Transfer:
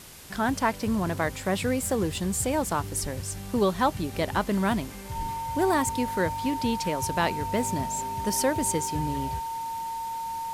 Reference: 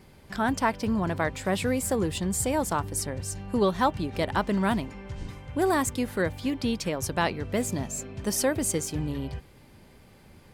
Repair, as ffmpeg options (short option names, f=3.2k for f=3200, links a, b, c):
-filter_complex "[0:a]bandreject=f=910:w=30,asplit=3[a][b][c];[a]afade=t=out:st=3.02:d=0.02[d];[b]highpass=f=140:w=0.5412,highpass=f=140:w=1.3066,afade=t=in:st=3.02:d=0.02,afade=t=out:st=3.14:d=0.02[e];[c]afade=t=in:st=3.14:d=0.02[f];[d][e][f]amix=inputs=3:normalize=0,asplit=3[g][h][i];[g]afade=t=out:st=5.18:d=0.02[j];[h]highpass=f=140:w=0.5412,highpass=f=140:w=1.3066,afade=t=in:st=5.18:d=0.02,afade=t=out:st=5.3:d=0.02[k];[i]afade=t=in:st=5.3:d=0.02[l];[j][k][l]amix=inputs=3:normalize=0,afwtdn=0.005"